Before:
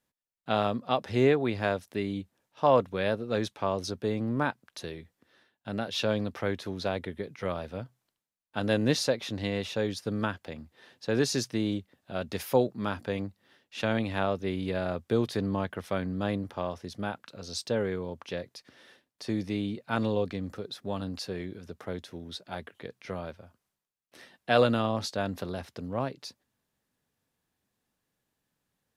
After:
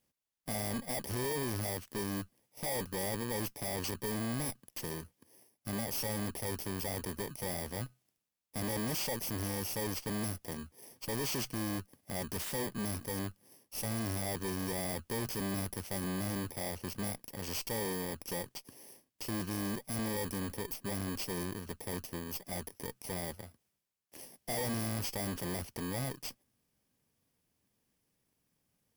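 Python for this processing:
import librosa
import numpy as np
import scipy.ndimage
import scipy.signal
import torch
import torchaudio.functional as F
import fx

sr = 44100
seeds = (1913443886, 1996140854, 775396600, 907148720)

y = fx.bit_reversed(x, sr, seeds[0], block=32)
y = fx.tube_stage(y, sr, drive_db=39.0, bias=0.65)
y = F.gain(torch.from_numpy(y), 6.0).numpy()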